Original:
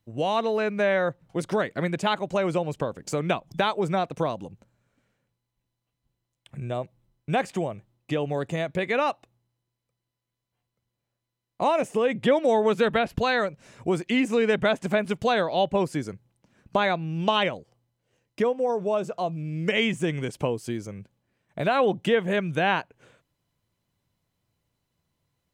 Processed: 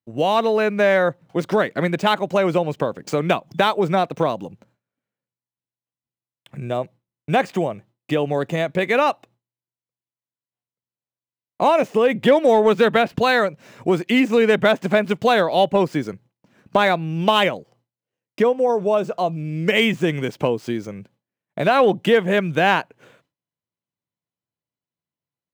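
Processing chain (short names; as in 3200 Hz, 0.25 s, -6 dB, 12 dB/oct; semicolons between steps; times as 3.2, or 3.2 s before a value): median filter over 5 samples; HPF 140 Hz; gate with hold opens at -55 dBFS; in parallel at -7 dB: overloaded stage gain 16 dB; on the sum: gain +3.5 dB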